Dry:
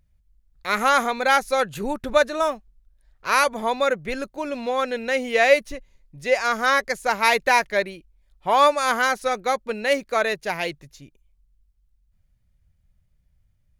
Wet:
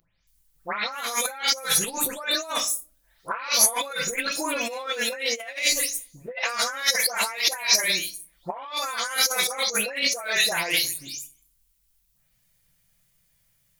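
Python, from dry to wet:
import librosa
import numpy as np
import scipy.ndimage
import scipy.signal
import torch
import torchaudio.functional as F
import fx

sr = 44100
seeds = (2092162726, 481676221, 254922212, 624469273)

y = fx.spec_delay(x, sr, highs='late', ms=271)
y = fx.room_shoebox(y, sr, seeds[0], volume_m3=200.0, walls='furnished', distance_m=0.75)
y = fx.over_compress(y, sr, threshold_db=-30.0, ratio=-1.0)
y = fx.tilt_eq(y, sr, slope=4.0)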